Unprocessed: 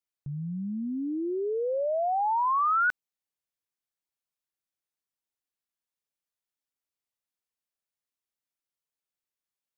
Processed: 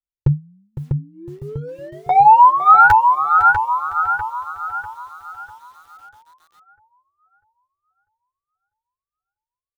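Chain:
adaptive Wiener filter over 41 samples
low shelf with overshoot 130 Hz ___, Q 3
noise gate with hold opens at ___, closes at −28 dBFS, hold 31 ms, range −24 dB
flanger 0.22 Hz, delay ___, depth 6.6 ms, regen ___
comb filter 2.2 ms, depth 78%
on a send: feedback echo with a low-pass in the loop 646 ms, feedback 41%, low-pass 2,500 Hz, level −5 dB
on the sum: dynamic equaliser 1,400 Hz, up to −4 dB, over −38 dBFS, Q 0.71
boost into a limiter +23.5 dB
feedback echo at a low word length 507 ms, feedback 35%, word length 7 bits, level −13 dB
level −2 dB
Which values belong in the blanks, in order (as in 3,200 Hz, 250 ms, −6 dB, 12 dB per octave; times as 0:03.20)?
+11.5 dB, −26 dBFS, 5 ms, −12%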